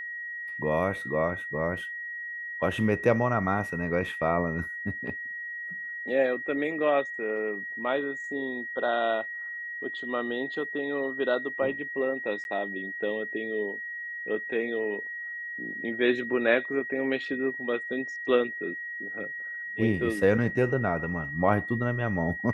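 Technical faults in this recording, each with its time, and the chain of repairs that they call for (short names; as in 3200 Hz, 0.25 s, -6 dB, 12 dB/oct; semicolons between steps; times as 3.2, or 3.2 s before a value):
tone 1900 Hz -34 dBFS
12.44–12.45 gap 11 ms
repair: notch 1900 Hz, Q 30; interpolate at 12.44, 11 ms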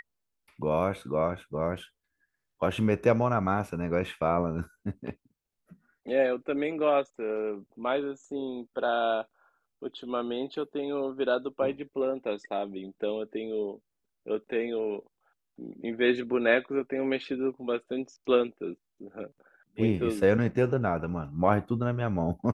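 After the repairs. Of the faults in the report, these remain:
none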